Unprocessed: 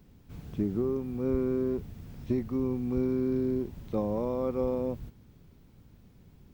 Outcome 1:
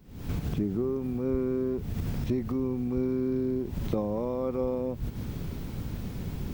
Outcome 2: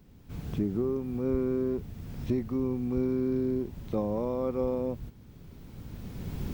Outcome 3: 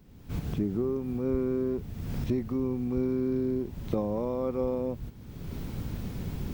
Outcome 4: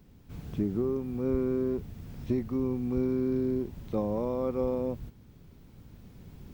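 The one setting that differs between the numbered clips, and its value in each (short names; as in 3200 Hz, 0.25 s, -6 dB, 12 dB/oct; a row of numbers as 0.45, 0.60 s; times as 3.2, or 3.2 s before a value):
recorder AGC, rising by: 86, 14, 33, 5.3 dB/s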